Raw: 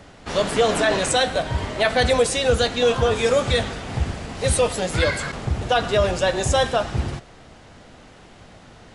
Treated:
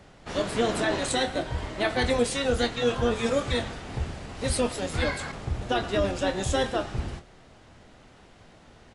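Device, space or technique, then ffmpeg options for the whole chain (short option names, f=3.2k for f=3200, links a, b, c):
octave pedal: -filter_complex "[0:a]asplit=2[a][b];[b]asetrate=22050,aresample=44100,atempo=2,volume=-5dB[c];[a][c]amix=inputs=2:normalize=0,asplit=2[d][e];[e]adelay=25,volume=-10.5dB[f];[d][f]amix=inputs=2:normalize=0,volume=-8dB"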